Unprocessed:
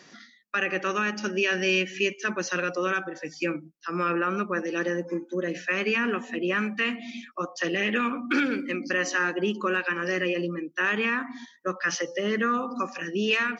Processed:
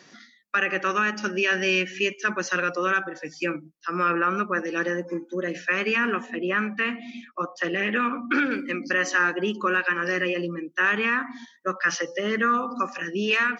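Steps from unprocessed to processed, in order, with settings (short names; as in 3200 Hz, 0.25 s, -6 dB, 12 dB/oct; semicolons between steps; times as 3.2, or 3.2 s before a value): dynamic EQ 1400 Hz, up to +5 dB, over -39 dBFS, Q 1.2; wow and flutter 20 cents; 6.26–8.51 high shelf 5000 Hz -11.5 dB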